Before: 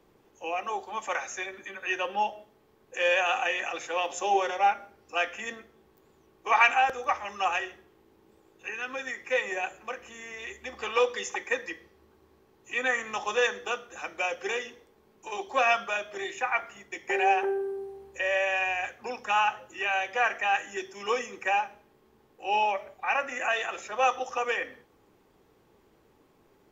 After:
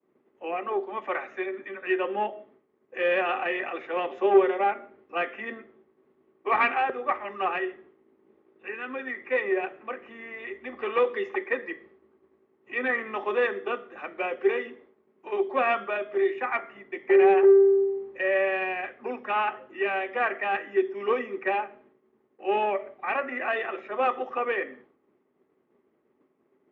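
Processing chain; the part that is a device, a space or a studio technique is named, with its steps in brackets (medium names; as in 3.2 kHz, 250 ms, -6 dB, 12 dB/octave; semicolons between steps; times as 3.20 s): high-pass 87 Hz; dynamic bell 400 Hz, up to +7 dB, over -48 dBFS, Q 4.2; expander -55 dBFS; guitar amplifier (valve stage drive 15 dB, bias 0.3; tone controls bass +4 dB, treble -11 dB; cabinet simulation 100–3600 Hz, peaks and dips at 110 Hz -9 dB, 250 Hz +10 dB, 380 Hz +10 dB, 610 Hz +7 dB, 1.2 kHz +6 dB, 2 kHz +7 dB); trim -3 dB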